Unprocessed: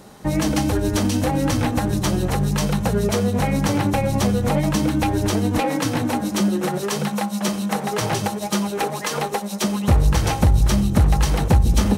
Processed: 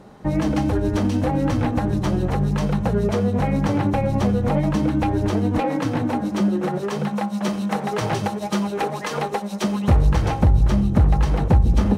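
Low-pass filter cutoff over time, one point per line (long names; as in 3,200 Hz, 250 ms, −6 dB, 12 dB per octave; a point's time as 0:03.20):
low-pass filter 6 dB per octave
0:07.06 1,500 Hz
0:07.64 2,700 Hz
0:09.88 2,700 Hz
0:10.40 1,300 Hz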